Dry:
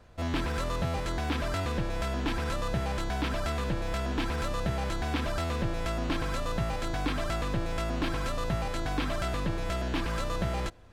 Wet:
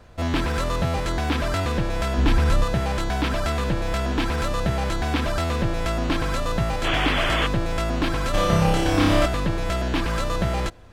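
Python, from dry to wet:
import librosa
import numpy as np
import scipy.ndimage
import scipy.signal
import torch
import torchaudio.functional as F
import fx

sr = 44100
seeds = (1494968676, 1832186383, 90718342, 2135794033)

y = fx.low_shelf(x, sr, hz=140.0, db=9.5, at=(2.18, 2.64))
y = fx.spec_paint(y, sr, seeds[0], shape='noise', start_s=6.84, length_s=0.63, low_hz=250.0, high_hz=3500.0, level_db=-32.0)
y = fx.room_flutter(y, sr, wall_m=5.2, rt60_s=1.2, at=(8.33, 9.25), fade=0.02)
y = y * librosa.db_to_amplitude(7.0)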